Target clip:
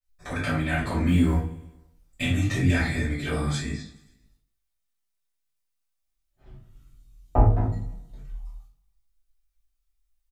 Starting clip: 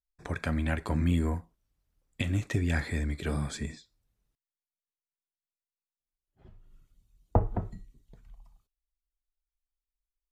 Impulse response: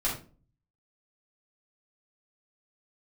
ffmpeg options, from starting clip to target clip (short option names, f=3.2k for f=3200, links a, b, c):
-filter_complex "[0:a]highshelf=f=2.4k:g=7.5,asettb=1/sr,asplit=3[a][b][c];[a]atrim=end=1.084[d];[b]atrim=start=1.08:end=2.22,asetpts=PTS-STARTPTS,afade=t=in:d=0.004:c=qsin,afade=t=out:st=1.136:d=0.004:c=qsin,acrusher=bits=8:mode=log:mix=0:aa=0.000001[e];[c]atrim=start=2.216[f];[d][e]acrossfade=d=0.004:c1=hsin:c2=qsin[g];[g][f]acrossfade=d=0.004:c1=qsin:c2=hsin,flanger=delay=19:depth=5.3:speed=0.27,aecho=1:1:105|210|315|420|525:0.1|0.059|0.0348|0.0205|0.0121[h];[1:a]atrim=start_sample=2205,afade=t=out:st=0.39:d=0.01,atrim=end_sample=17640[i];[h][i]afir=irnorm=-1:irlink=0,adynamicequalizer=threshold=0.00355:dfrequency=5500:dqfactor=0.7:tfrequency=5500:tqfactor=0.7:attack=5:release=100:ratio=0.375:range=2.5:mode=cutabove:tftype=highshelf"